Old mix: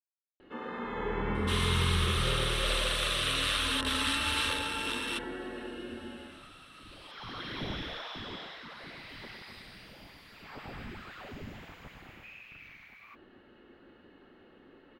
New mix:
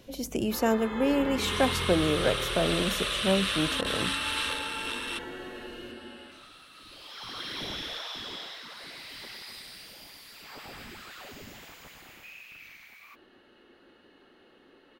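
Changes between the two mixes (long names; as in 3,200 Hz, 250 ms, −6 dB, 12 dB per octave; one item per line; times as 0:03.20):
speech: unmuted
first sound: add bass and treble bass −7 dB, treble +15 dB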